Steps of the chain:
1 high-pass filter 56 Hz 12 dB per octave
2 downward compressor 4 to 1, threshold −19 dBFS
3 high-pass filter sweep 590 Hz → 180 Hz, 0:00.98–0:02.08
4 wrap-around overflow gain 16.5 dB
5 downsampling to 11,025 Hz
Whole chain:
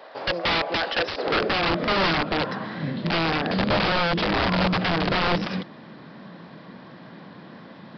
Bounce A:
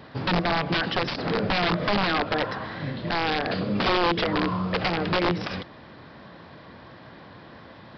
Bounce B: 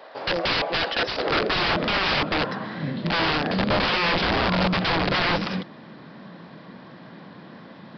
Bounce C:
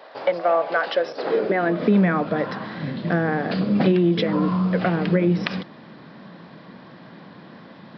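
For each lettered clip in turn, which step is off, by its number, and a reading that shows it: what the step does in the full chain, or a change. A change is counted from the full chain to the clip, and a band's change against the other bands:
3, change in momentary loudness spread −9 LU
2, change in momentary loudness spread −10 LU
4, change in crest factor +5.0 dB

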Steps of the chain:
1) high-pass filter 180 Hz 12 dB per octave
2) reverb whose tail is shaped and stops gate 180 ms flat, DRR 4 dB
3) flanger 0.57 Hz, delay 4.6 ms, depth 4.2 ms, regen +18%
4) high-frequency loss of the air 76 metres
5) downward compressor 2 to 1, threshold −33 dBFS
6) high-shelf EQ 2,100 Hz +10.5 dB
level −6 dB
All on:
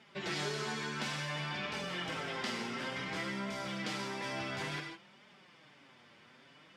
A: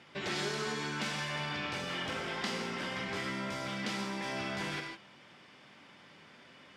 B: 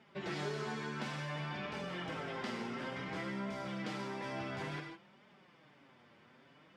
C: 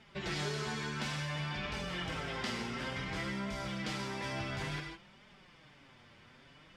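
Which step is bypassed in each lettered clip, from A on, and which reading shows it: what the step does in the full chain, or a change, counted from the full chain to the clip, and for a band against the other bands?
3, change in integrated loudness +1.5 LU
6, 8 kHz band −8.5 dB
1, 125 Hz band +5.0 dB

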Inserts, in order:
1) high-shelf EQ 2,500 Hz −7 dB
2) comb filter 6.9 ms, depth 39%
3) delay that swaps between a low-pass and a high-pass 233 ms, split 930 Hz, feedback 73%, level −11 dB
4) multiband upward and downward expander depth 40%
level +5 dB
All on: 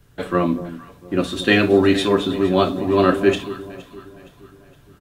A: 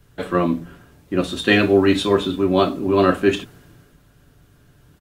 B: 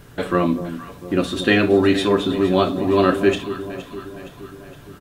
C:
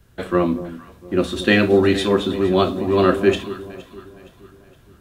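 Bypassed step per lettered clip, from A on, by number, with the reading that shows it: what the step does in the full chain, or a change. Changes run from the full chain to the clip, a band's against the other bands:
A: 3, change in momentary loudness spread −9 LU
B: 4, change in momentary loudness spread +1 LU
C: 2, change in momentary loudness spread −2 LU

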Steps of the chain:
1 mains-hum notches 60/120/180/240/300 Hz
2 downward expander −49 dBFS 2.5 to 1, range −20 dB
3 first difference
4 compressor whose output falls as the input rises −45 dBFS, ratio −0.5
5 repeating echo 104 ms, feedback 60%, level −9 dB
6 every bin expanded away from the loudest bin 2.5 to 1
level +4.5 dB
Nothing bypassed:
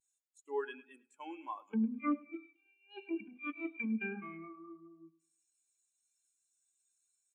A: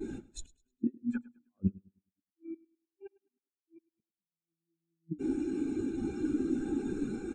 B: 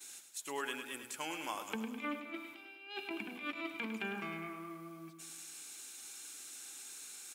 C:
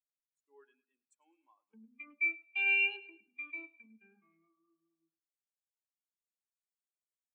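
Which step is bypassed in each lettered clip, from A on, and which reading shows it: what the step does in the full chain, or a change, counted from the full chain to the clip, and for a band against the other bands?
3, 1 kHz band −15.0 dB
6, 250 Hz band −6.0 dB
4, change in crest factor +2.0 dB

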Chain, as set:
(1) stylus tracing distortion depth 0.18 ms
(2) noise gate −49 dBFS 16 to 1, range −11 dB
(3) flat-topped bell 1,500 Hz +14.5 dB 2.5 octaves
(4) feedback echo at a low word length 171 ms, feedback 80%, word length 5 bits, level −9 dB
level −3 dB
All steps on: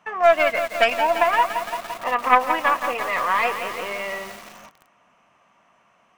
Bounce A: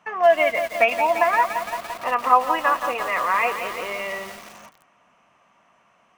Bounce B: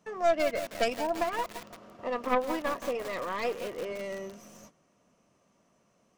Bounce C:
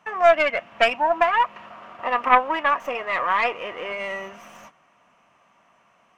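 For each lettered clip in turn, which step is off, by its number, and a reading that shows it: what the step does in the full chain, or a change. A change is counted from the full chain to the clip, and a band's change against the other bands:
1, 4 kHz band −3.5 dB
3, 250 Hz band +10.0 dB
4, change in momentary loudness spread +1 LU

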